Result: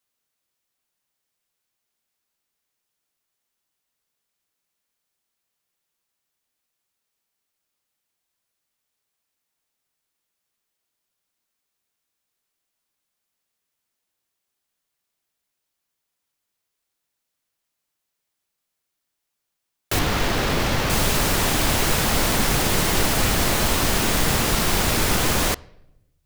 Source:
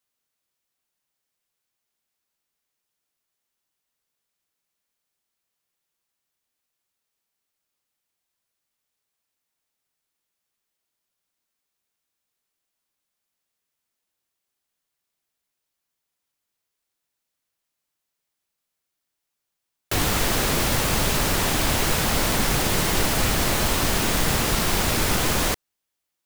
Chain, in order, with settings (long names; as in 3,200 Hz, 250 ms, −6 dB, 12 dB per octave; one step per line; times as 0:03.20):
0:19.99–0:20.90: running median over 5 samples
on a send: convolution reverb RT60 0.90 s, pre-delay 3 ms, DRR 21 dB
on the sum: level +1.5 dB